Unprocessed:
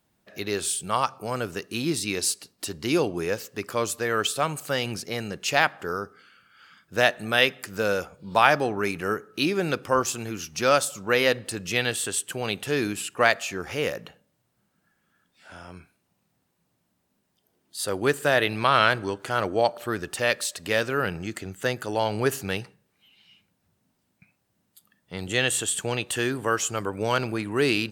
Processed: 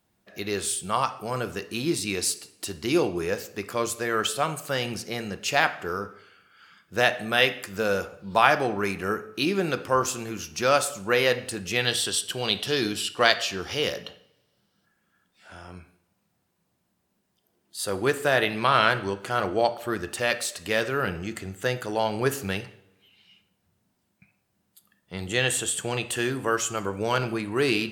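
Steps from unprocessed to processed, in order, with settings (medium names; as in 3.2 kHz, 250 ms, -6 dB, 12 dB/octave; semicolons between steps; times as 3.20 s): time-frequency box 11.87–14.85 s, 2.8–6 kHz +9 dB; on a send: treble shelf 3.8 kHz -8 dB + reverberation, pre-delay 3 ms, DRR 9.5 dB; on the sum: trim -1 dB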